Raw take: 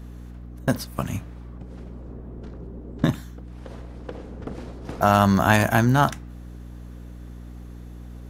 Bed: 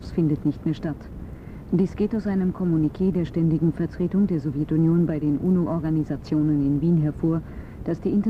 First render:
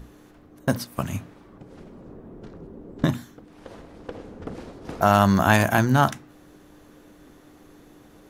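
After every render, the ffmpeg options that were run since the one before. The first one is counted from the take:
-af "bandreject=f=60:t=h:w=6,bandreject=f=120:t=h:w=6,bandreject=f=180:t=h:w=6,bandreject=f=240:t=h:w=6"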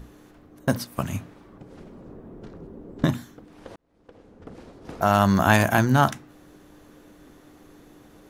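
-filter_complex "[0:a]asplit=2[a][b];[a]atrim=end=3.76,asetpts=PTS-STARTPTS,afade=t=out:st=3.756:d=0.004:c=hsin[c];[b]atrim=start=3.76,asetpts=PTS-STARTPTS,afade=t=in:d=1.71[d];[c][d]concat=n=2:v=0:a=1"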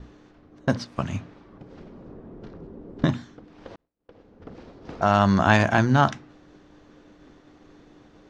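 -af "lowpass=f=5.8k:w=0.5412,lowpass=f=5.8k:w=1.3066,agate=range=-33dB:threshold=-48dB:ratio=3:detection=peak"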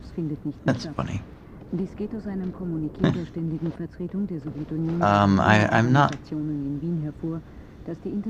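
-filter_complex "[1:a]volume=-7.5dB[a];[0:a][a]amix=inputs=2:normalize=0"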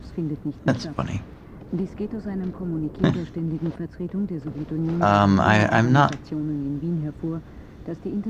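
-af "volume=1.5dB,alimiter=limit=-3dB:level=0:latency=1"

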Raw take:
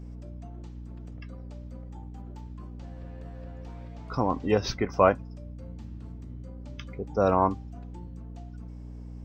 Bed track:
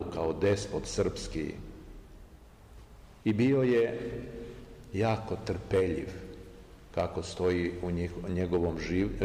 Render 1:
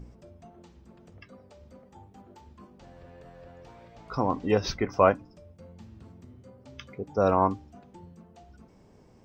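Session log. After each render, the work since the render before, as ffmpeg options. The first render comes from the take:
-af "bandreject=f=60:t=h:w=4,bandreject=f=120:t=h:w=4,bandreject=f=180:t=h:w=4,bandreject=f=240:t=h:w=4,bandreject=f=300:t=h:w=4"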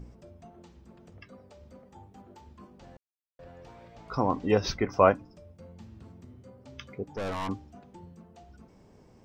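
-filter_complex "[0:a]asettb=1/sr,asplit=3[a][b][c];[a]atrim=end=7.044[d];[b]atrim=start=7.04:end=7.49,asetpts=PTS-STARTPTS,afade=t=in:d=0.004:c=qsin,afade=t=out:st=0.446:d=0.004:c=qsin,aeval=exprs='(tanh(35.5*val(0)+0.4)-tanh(0.4))/35.5':c=same[e];[c]atrim=start=7.486[f];[d][e]acrossfade=d=0.004:c1=hsin:c2=qsin[g];[g][f]acrossfade=d=0.004:c1=qsin:c2=hsin,asplit=3[h][i][j];[h]atrim=end=2.97,asetpts=PTS-STARTPTS,afade=t=out:st=2.966:d=0.004:c=hsin[k];[i]atrim=start=2.97:end=3.39,asetpts=PTS-STARTPTS,volume=0[l];[j]atrim=start=3.39,asetpts=PTS-STARTPTS,afade=t=in:d=0.004:c=hsin[m];[k][l][m]concat=n=3:v=0:a=1"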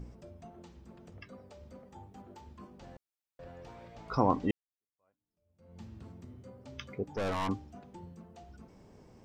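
-filter_complex "[0:a]asplit=2[a][b];[a]atrim=end=4.51,asetpts=PTS-STARTPTS,afade=t=out:st=4.506:d=0.004:c=hsin[c];[b]atrim=start=4.51,asetpts=PTS-STARTPTS,afade=t=in:d=1.28:c=exp[d];[c][d]concat=n=2:v=0:a=1"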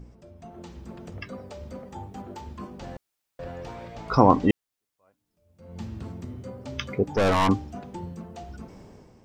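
-af "dynaudnorm=f=120:g=9:m=12dB"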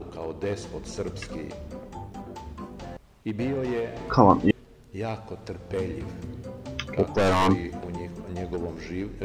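-filter_complex "[1:a]volume=-3dB[a];[0:a][a]amix=inputs=2:normalize=0"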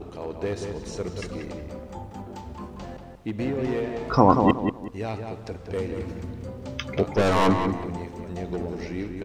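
-filter_complex "[0:a]asplit=2[a][b];[b]adelay=186,lowpass=f=2.4k:p=1,volume=-5dB,asplit=2[c][d];[d]adelay=186,lowpass=f=2.4k:p=1,volume=0.29,asplit=2[e][f];[f]adelay=186,lowpass=f=2.4k:p=1,volume=0.29,asplit=2[g][h];[h]adelay=186,lowpass=f=2.4k:p=1,volume=0.29[i];[a][c][e][g][i]amix=inputs=5:normalize=0"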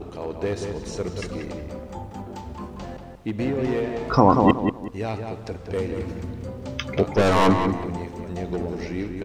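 -af "volume=2.5dB,alimiter=limit=-3dB:level=0:latency=1"

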